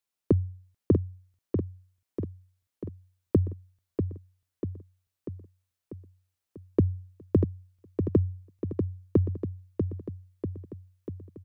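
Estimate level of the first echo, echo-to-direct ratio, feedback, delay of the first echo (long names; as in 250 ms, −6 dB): −6.0 dB, −4.0 dB, 58%, 642 ms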